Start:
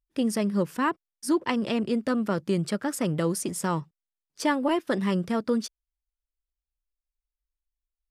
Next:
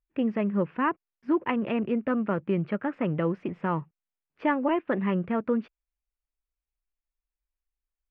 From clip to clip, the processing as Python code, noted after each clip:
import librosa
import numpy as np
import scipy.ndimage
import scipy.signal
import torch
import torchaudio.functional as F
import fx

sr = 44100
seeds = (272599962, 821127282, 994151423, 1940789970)

y = scipy.signal.sosfilt(scipy.signal.cheby1(4, 1.0, 2600.0, 'lowpass', fs=sr, output='sos'), x)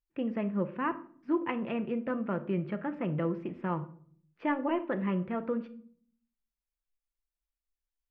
y = fx.room_shoebox(x, sr, seeds[0], volume_m3=680.0, walls='furnished', distance_m=0.79)
y = y * librosa.db_to_amplitude(-6.0)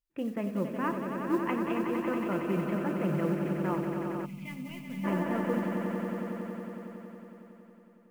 y = fx.mod_noise(x, sr, seeds[1], snr_db=30)
y = fx.echo_swell(y, sr, ms=92, loudest=5, wet_db=-8.5)
y = fx.spec_box(y, sr, start_s=4.25, length_s=0.79, low_hz=270.0, high_hz=2000.0, gain_db=-21)
y = y * librosa.db_to_amplitude(-1.0)